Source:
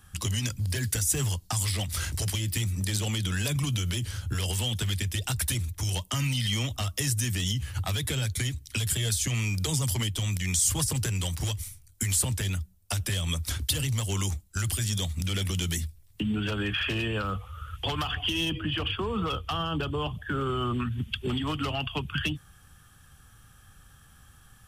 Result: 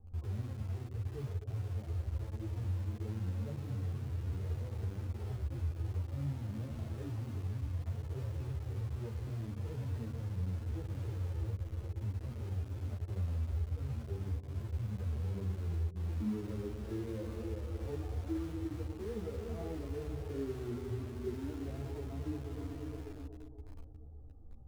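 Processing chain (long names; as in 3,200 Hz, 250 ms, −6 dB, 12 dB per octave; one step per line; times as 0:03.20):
inverse Chebyshev low-pass filter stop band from 1,900 Hz, stop band 60 dB
parametric band 160 Hz −8.5 dB 0.99 octaves
mains-hum notches 50/100/150/200/250/300/350/400 Hz
on a send: echo machine with several playback heads 120 ms, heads all three, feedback 63%, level −13 dB
on the sum: downward compressor 8 to 1, threshold −46 dBFS, peak gain reduction 18 dB
in parallel at −6 dB: bit-depth reduction 8 bits, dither none
on the sum: harmonic and percussive parts rebalanced percussive −16 dB
string-ensemble chorus
level +10.5 dB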